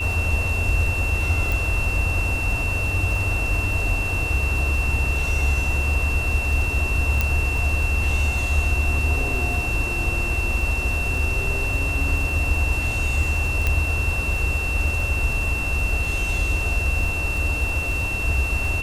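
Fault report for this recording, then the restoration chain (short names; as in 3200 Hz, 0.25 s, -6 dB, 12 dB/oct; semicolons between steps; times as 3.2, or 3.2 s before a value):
crackle 39/s -29 dBFS
tone 2700 Hz -25 dBFS
1.52 pop
7.21 pop -6 dBFS
13.67 pop -8 dBFS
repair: de-click; notch 2700 Hz, Q 30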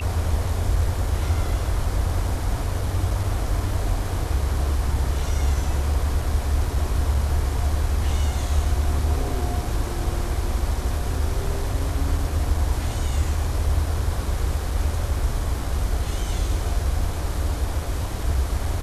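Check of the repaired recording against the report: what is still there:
none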